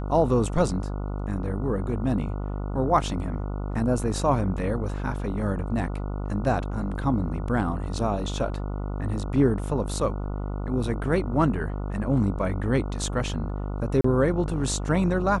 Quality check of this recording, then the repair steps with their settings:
mains buzz 50 Hz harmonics 29 −30 dBFS
0:14.01–0:14.04: drop-out 34 ms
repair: hum removal 50 Hz, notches 29
repair the gap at 0:14.01, 34 ms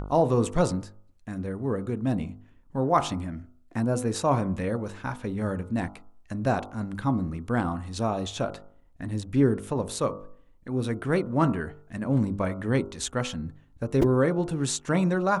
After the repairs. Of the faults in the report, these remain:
none of them is left

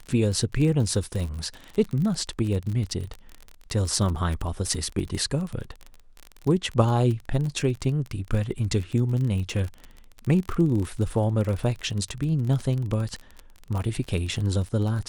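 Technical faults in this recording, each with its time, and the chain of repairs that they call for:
surface crackle 35 per second −29 dBFS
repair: click removal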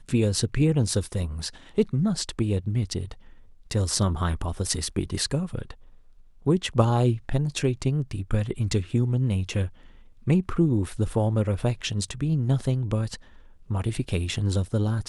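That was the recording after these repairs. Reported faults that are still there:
none of them is left

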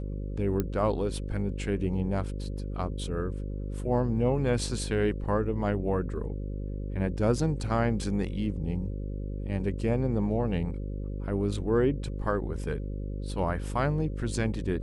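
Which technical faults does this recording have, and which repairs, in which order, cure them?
mains buzz 50 Hz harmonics 11 −34 dBFS
0:00.60: click −15 dBFS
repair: click removal
hum removal 50 Hz, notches 11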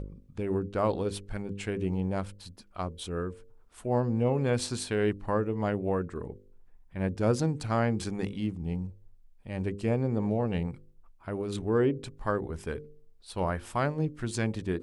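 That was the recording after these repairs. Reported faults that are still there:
none of them is left

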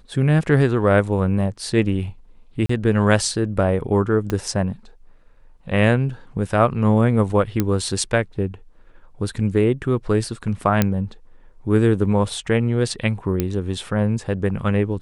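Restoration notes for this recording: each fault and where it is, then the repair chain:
0:02.66–0:02.69: drop-out 34 ms
0:04.30: click −10 dBFS
0:07.60: click −6 dBFS
0:10.82: click −3 dBFS
0:13.40: click −7 dBFS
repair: click removal
repair the gap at 0:02.66, 34 ms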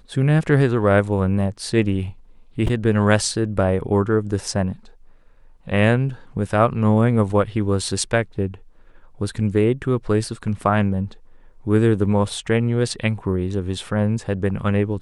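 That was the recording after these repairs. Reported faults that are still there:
0:04.30: click

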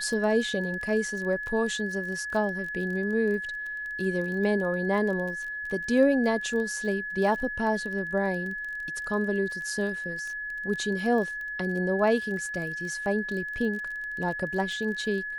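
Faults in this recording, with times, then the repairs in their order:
surface crackle 26 per second −34 dBFS
whistle 1,700 Hz −32 dBFS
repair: click removal
notch filter 1,700 Hz, Q 30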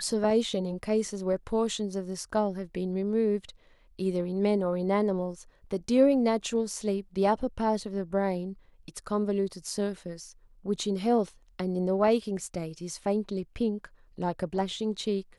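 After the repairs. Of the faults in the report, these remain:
none of them is left

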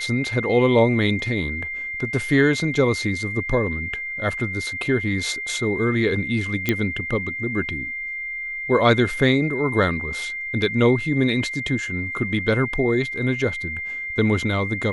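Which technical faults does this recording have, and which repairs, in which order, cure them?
whistle 2,100 Hz −27 dBFS
0:06.69: click −6 dBFS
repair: click removal
notch filter 2,100 Hz, Q 30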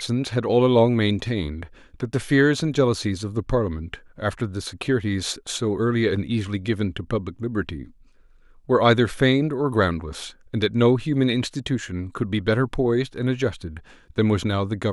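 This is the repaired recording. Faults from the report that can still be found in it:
none of them is left

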